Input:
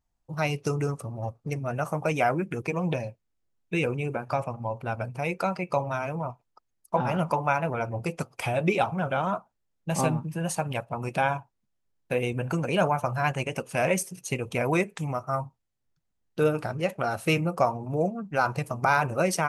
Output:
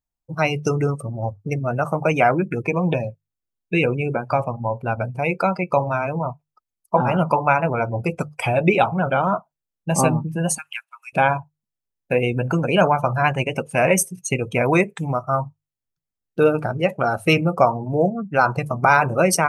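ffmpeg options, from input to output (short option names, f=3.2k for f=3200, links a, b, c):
-filter_complex "[0:a]asettb=1/sr,asplit=3[a][b][c];[a]atrim=end=10.584[d];[b]atrim=start=10.58:end=11.13,asetpts=PTS-STARTPTS,afade=t=in:d=0.004:c=qsin,afade=t=out:st=0.546:d=0.004:c=qsin,highpass=f=1.5k:w=0.5412,highpass=f=1.5k:w=1.3066[e];[c]atrim=start=11.126[f];[d][e]acrossfade=d=0.004:c1=hsin:c2=qsin[g];[g][f]acrossfade=d=0.004:c1=qsin:c2=hsin,bandreject=f=50:t=h:w=6,bandreject=f=100:t=h:w=6,bandreject=f=150:t=h:w=6,afftdn=nr=17:nf=-38,highshelf=f=8.3k:g=8.5,volume=7.5dB"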